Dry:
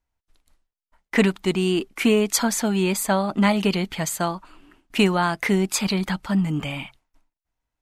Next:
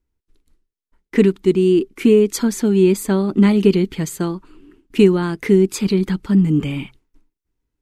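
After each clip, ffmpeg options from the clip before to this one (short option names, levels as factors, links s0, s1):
-af "lowshelf=f=510:t=q:w=3:g=8,dynaudnorm=f=240:g=9:m=3.76,volume=0.891"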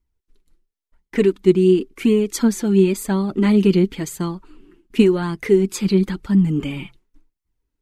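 -af "flanger=delay=0.9:depth=5:regen=29:speed=0.94:shape=sinusoidal,volume=1.26"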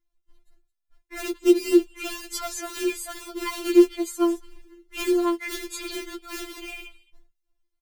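-filter_complex "[0:a]acrossover=split=2800[s0][s1];[s0]acrusher=bits=4:mode=log:mix=0:aa=0.000001[s2];[s1]aecho=1:1:218:0.211[s3];[s2][s3]amix=inputs=2:normalize=0,afftfilt=real='re*4*eq(mod(b,16),0)':imag='im*4*eq(mod(b,16),0)':win_size=2048:overlap=0.75,volume=0.841"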